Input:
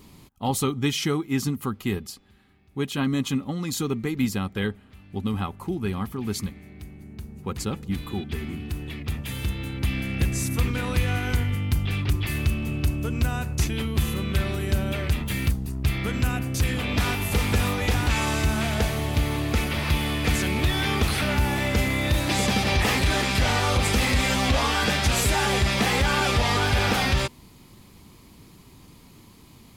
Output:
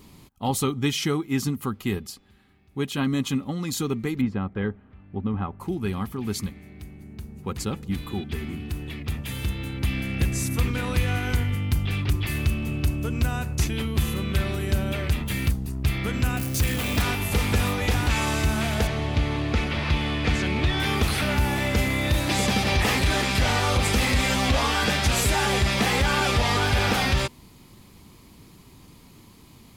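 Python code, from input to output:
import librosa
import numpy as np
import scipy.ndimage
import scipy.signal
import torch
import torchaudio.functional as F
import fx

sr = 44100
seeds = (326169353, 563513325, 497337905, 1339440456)

y = fx.lowpass(x, sr, hz=1600.0, slope=12, at=(4.2, 5.59), fade=0.02)
y = fx.crossing_spikes(y, sr, level_db=-24.5, at=(16.37, 17.02))
y = fx.lowpass(y, sr, hz=5000.0, slope=12, at=(18.87, 20.8))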